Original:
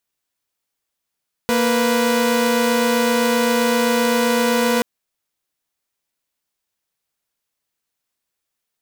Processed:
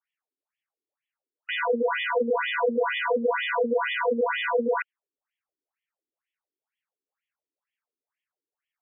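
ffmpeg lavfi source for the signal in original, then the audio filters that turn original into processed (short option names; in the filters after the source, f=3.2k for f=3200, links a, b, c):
-f lavfi -i "aevalsrc='0.168*((2*mod(233.08*t,1)-1)+(2*mod(493.88*t,1)-1))':d=3.33:s=44100"
-af "afftfilt=real='re*between(b*sr/1024,310*pow(2500/310,0.5+0.5*sin(2*PI*2.1*pts/sr))/1.41,310*pow(2500/310,0.5+0.5*sin(2*PI*2.1*pts/sr))*1.41)':imag='im*between(b*sr/1024,310*pow(2500/310,0.5+0.5*sin(2*PI*2.1*pts/sr))/1.41,310*pow(2500/310,0.5+0.5*sin(2*PI*2.1*pts/sr))*1.41)':win_size=1024:overlap=0.75"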